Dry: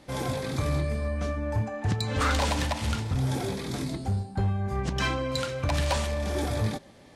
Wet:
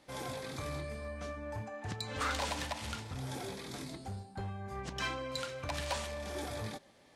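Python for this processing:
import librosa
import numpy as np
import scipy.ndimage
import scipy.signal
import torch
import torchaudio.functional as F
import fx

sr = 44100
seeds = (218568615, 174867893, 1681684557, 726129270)

y = fx.low_shelf(x, sr, hz=330.0, db=-9.0)
y = y * 10.0 ** (-7.0 / 20.0)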